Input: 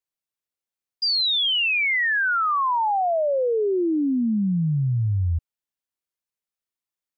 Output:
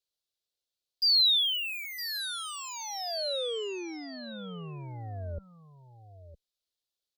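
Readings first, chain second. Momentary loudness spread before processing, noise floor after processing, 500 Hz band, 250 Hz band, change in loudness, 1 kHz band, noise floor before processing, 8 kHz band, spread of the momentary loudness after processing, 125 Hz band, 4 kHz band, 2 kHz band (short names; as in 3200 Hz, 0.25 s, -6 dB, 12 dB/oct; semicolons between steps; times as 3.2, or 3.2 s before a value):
5 LU, under -85 dBFS, -13.0 dB, -19.5 dB, -6.5 dB, -19.0 dB, under -85 dBFS, n/a, 20 LU, -17.5 dB, -2.5 dB, -17.5 dB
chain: added harmonics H 4 -28 dB, 7 -8 dB, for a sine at -18.5 dBFS; high shelf 4100 Hz -7 dB; limiter -26.5 dBFS, peak gain reduction 9.5 dB; ten-band EQ 125 Hz -6 dB, 250 Hz -10 dB, 500 Hz +4 dB, 1000 Hz -11 dB, 2000 Hz -11 dB, 4000 Hz +12 dB; echo 0.961 s -13.5 dB; gain -1.5 dB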